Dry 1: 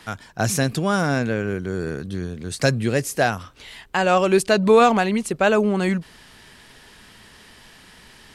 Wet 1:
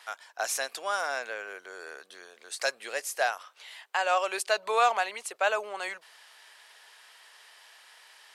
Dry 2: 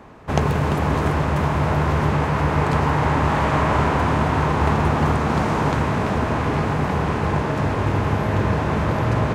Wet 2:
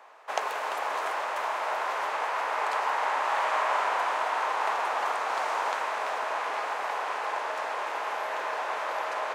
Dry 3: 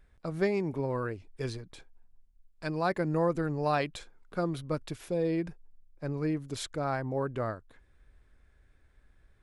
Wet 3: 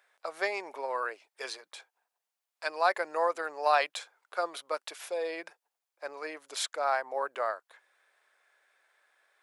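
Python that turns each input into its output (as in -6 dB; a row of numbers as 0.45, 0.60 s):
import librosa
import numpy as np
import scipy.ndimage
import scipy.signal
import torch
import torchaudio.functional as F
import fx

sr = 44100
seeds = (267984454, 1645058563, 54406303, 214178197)

y = scipy.signal.sosfilt(scipy.signal.butter(4, 610.0, 'highpass', fs=sr, output='sos'), x)
y = librosa.util.normalize(y) * 10.0 ** (-12 / 20.0)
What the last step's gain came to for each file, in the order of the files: -5.5, -4.5, +5.5 dB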